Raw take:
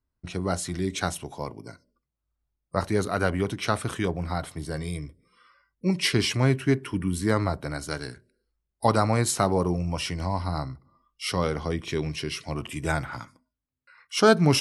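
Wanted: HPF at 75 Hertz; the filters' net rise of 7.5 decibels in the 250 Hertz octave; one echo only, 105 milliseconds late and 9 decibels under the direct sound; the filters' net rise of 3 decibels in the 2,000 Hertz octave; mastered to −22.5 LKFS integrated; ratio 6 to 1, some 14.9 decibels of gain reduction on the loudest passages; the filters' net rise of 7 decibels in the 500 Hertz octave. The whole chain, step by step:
high-pass filter 75 Hz
parametric band 250 Hz +8.5 dB
parametric band 500 Hz +6 dB
parametric band 2,000 Hz +3.5 dB
downward compressor 6 to 1, threshold −22 dBFS
single-tap delay 105 ms −9 dB
level +5.5 dB

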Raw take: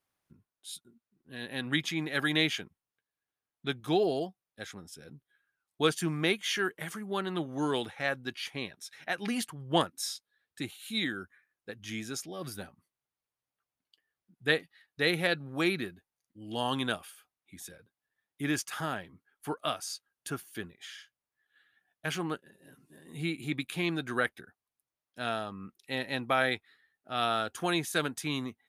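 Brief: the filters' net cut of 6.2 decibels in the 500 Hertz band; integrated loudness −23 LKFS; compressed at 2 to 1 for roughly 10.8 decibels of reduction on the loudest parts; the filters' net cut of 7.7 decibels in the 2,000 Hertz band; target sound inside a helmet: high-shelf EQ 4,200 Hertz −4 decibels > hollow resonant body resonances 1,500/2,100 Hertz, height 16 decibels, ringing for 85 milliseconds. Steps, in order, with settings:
parametric band 500 Hz −8 dB
parametric band 2,000 Hz −8.5 dB
downward compressor 2 to 1, threshold −46 dBFS
high-shelf EQ 4,200 Hz −4 dB
hollow resonant body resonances 1,500/2,100 Hz, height 16 dB, ringing for 85 ms
level +22 dB

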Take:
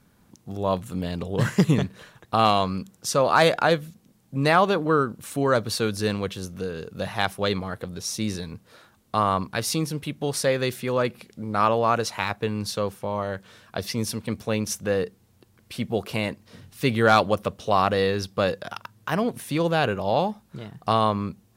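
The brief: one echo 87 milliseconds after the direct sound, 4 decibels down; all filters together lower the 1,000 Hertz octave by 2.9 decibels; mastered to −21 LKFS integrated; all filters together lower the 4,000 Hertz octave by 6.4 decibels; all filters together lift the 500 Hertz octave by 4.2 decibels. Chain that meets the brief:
parametric band 500 Hz +6.5 dB
parametric band 1,000 Hz −6 dB
parametric band 4,000 Hz −8 dB
single-tap delay 87 ms −4 dB
level +1 dB

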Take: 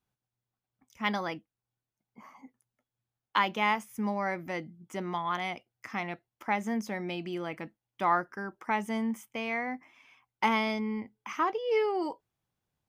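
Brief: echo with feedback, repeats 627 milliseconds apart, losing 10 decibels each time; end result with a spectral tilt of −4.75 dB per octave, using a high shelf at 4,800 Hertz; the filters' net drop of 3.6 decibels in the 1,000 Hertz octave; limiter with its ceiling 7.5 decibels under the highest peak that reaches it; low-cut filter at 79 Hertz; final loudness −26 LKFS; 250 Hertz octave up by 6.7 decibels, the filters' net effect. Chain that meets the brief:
high-pass filter 79 Hz
parametric band 250 Hz +8.5 dB
parametric band 1,000 Hz −5 dB
high-shelf EQ 4,800 Hz +3 dB
brickwall limiter −20.5 dBFS
repeating echo 627 ms, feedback 32%, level −10 dB
level +5.5 dB

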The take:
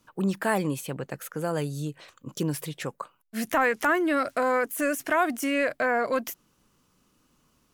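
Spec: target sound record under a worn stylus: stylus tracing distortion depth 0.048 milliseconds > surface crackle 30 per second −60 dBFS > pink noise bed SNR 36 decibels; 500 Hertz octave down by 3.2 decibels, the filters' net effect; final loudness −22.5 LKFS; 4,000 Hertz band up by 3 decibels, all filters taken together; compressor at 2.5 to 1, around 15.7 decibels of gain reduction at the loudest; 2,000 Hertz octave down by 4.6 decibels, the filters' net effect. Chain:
parametric band 500 Hz −3.5 dB
parametric band 2,000 Hz −7.5 dB
parametric band 4,000 Hz +7 dB
downward compressor 2.5 to 1, threshold −47 dBFS
stylus tracing distortion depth 0.048 ms
surface crackle 30 per second −60 dBFS
pink noise bed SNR 36 dB
level +21 dB

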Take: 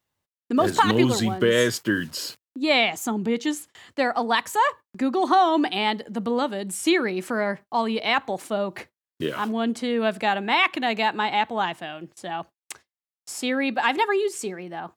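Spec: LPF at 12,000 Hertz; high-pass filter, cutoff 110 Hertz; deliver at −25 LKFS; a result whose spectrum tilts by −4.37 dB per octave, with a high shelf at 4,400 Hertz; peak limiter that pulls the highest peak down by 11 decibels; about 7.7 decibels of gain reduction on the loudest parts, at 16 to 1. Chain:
high-pass filter 110 Hz
low-pass filter 12,000 Hz
high-shelf EQ 4,400 Hz −7.5 dB
downward compressor 16 to 1, threshold −21 dBFS
level +7.5 dB
brickwall limiter −15 dBFS

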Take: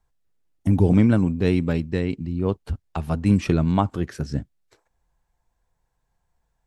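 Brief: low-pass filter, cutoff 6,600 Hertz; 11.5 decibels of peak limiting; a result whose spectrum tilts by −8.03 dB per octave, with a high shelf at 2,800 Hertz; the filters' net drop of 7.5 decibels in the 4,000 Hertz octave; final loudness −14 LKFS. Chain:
low-pass filter 6,600 Hz
high-shelf EQ 2,800 Hz −8 dB
parametric band 4,000 Hz −3 dB
level +14 dB
brickwall limiter −2 dBFS

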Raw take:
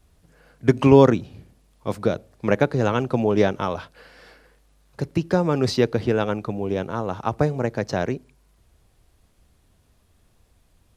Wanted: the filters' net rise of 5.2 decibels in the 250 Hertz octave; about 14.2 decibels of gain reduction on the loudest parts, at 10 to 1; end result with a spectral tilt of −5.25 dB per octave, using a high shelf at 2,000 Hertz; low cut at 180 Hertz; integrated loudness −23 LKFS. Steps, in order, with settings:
high-pass filter 180 Hz
parametric band 250 Hz +7.5 dB
high-shelf EQ 2,000 Hz −3 dB
downward compressor 10 to 1, threshold −19 dBFS
level +3.5 dB

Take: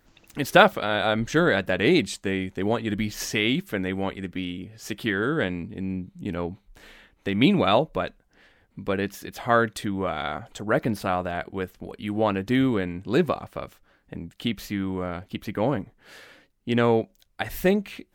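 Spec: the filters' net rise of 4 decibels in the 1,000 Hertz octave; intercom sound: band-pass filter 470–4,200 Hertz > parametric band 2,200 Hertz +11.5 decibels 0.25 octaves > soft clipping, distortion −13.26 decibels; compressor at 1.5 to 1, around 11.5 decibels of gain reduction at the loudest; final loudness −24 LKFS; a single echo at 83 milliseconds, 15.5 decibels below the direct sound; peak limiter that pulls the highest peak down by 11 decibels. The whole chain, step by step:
parametric band 1,000 Hz +6 dB
downward compressor 1.5 to 1, threshold −40 dBFS
brickwall limiter −22 dBFS
band-pass filter 470–4,200 Hz
parametric band 2,200 Hz +11.5 dB 0.25 octaves
single-tap delay 83 ms −15.5 dB
soft clipping −27.5 dBFS
level +14.5 dB

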